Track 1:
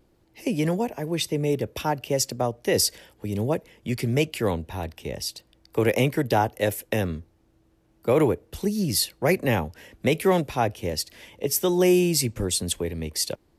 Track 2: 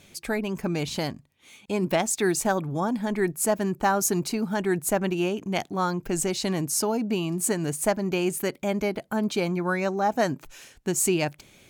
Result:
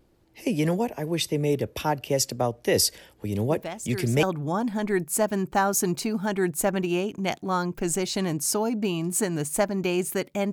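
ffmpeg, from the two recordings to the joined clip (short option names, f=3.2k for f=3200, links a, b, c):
-filter_complex "[1:a]asplit=2[a][b];[0:a]apad=whole_dur=10.52,atrim=end=10.52,atrim=end=4.232[c];[b]atrim=start=2.508:end=8.8[d];[a]atrim=start=1.78:end=2.51,asetpts=PTS-STARTPTS,volume=-11dB,afade=t=in:d=0.004:c=hsin,afade=t=out:st=0.726:d=0.004:c=hsin,adelay=3500[e];[c][d]acrossfade=d=0.004:c1=hsin:c2=hsin[f];[f][e]amix=inputs=2:normalize=0"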